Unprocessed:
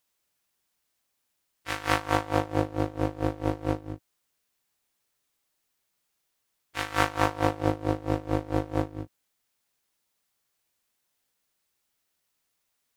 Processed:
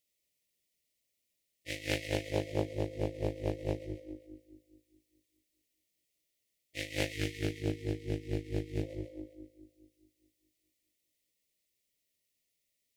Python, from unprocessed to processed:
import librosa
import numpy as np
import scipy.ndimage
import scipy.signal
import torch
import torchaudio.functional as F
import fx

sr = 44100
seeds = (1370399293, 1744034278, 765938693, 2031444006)

p1 = x + fx.echo_split(x, sr, split_hz=450.0, low_ms=209, high_ms=133, feedback_pct=52, wet_db=-10.0, dry=0)
p2 = fx.spec_box(p1, sr, start_s=7.12, length_s=1.71, low_hz=490.0, high_hz=1500.0, gain_db=-28)
p3 = fx.brickwall_bandstop(p2, sr, low_hz=680.0, high_hz=1800.0)
p4 = fx.doppler_dist(p3, sr, depth_ms=0.49)
y = F.gain(torch.from_numpy(p4), -4.5).numpy()